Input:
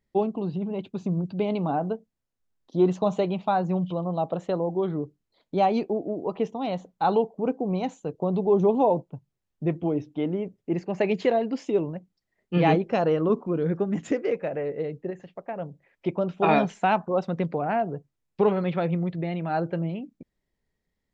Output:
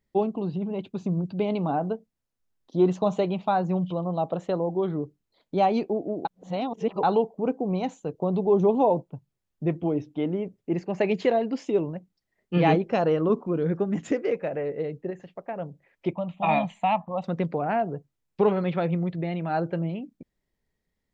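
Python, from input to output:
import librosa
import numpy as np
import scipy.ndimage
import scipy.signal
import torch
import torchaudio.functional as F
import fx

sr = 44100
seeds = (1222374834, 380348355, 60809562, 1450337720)

y = fx.fixed_phaser(x, sr, hz=1500.0, stages=6, at=(16.13, 17.24))
y = fx.edit(y, sr, fx.reverse_span(start_s=6.25, length_s=0.78), tone=tone)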